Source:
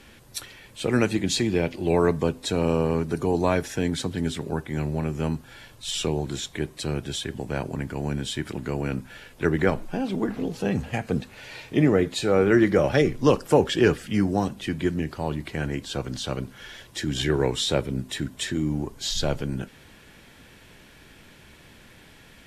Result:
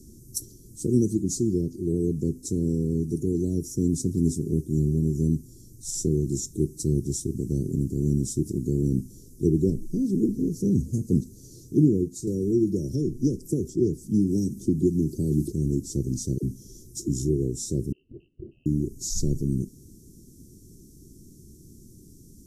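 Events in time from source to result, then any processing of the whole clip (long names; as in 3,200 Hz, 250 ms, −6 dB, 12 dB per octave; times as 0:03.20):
0:12.27–0:15.52: multiband upward and downward compressor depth 100%
0:16.38–0:17.09: all-pass dispersion lows, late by 49 ms, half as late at 390 Hz
0:17.92–0:18.66: voice inversion scrambler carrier 2,900 Hz
whole clip: speech leveller within 4 dB 0.5 s; Chebyshev band-stop filter 370–5,800 Hz, order 4; level +1.5 dB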